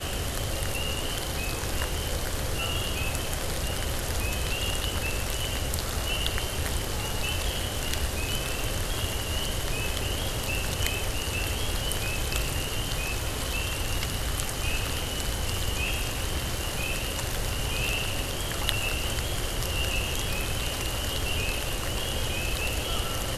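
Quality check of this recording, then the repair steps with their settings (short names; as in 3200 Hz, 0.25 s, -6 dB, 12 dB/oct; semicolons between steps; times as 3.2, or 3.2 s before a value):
crackle 23/s -36 dBFS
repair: de-click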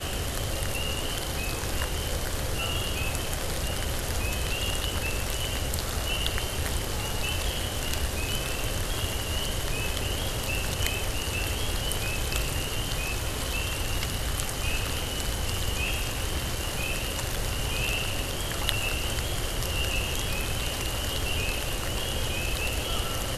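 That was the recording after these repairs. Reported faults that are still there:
none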